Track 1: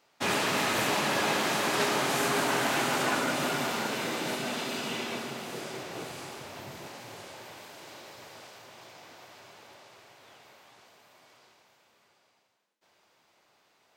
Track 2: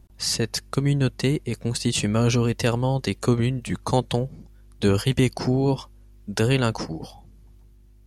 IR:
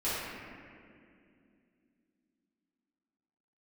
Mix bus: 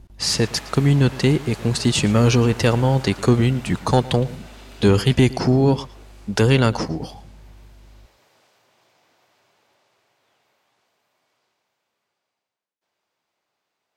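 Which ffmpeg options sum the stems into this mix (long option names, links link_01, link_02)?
-filter_complex "[0:a]volume=-11.5dB[link_01];[1:a]highshelf=frequency=10000:gain=-11,acontrast=89,volume=-1.5dB,asplit=2[link_02][link_03];[link_03]volume=-19.5dB,aecho=0:1:113:1[link_04];[link_01][link_02][link_04]amix=inputs=3:normalize=0"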